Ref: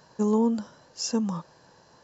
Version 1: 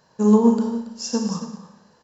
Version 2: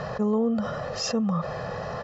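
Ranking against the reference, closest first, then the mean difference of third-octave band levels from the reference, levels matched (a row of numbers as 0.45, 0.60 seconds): 1, 2; 5.0, 11.0 decibels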